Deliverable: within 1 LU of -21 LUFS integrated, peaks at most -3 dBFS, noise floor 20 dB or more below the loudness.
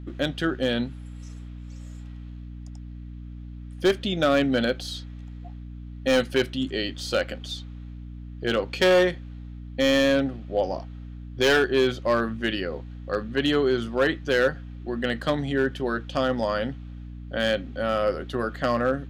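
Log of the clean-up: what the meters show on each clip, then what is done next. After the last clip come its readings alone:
clipped samples 0.9%; clipping level -14.0 dBFS; hum 60 Hz; highest harmonic 300 Hz; hum level -36 dBFS; loudness -25.0 LUFS; peak level -14.0 dBFS; loudness target -21.0 LUFS
-> clip repair -14 dBFS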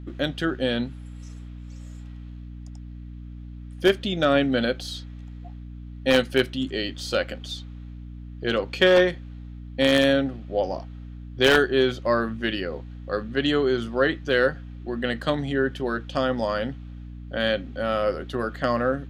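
clipped samples 0.0%; hum 60 Hz; highest harmonic 300 Hz; hum level -36 dBFS
-> hum notches 60/120/180/240/300 Hz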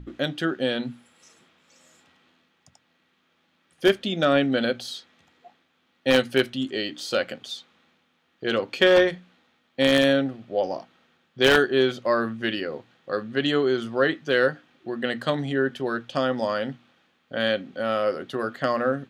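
hum not found; loudness -24.0 LUFS; peak level -4.5 dBFS; loudness target -21.0 LUFS
-> trim +3 dB; peak limiter -3 dBFS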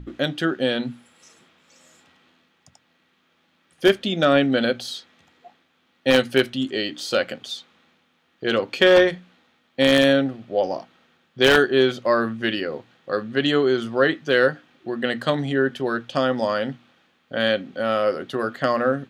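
loudness -21.5 LUFS; peak level -3.0 dBFS; noise floor -65 dBFS

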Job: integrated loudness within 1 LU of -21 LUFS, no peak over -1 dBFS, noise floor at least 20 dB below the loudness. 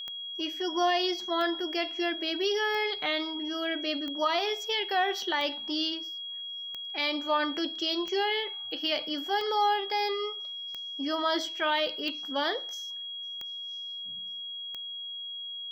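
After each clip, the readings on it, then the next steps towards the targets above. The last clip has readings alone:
clicks found 12; steady tone 3.3 kHz; tone level -36 dBFS; loudness -30.0 LUFS; peak level -15.5 dBFS; loudness target -21.0 LUFS
-> de-click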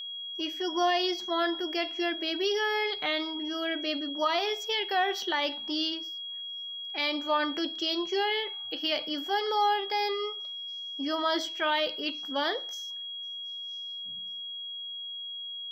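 clicks found 0; steady tone 3.3 kHz; tone level -36 dBFS
-> band-stop 3.3 kHz, Q 30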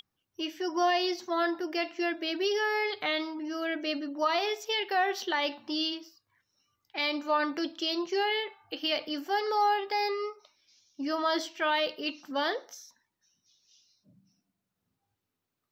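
steady tone not found; loudness -30.5 LUFS; peak level -16.5 dBFS; loudness target -21.0 LUFS
-> trim +9.5 dB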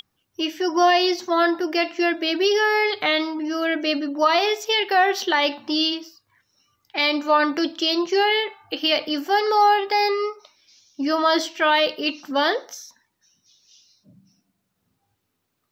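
loudness -21.0 LUFS; peak level -7.0 dBFS; noise floor -75 dBFS

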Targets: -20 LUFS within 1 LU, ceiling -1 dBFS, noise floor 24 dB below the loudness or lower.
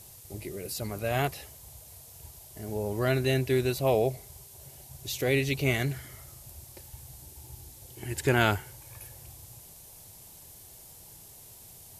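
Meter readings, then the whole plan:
noise floor -51 dBFS; noise floor target -53 dBFS; loudness -29.0 LUFS; peak level -8.5 dBFS; loudness target -20.0 LUFS
-> noise reduction 6 dB, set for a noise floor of -51 dBFS; trim +9 dB; peak limiter -1 dBFS

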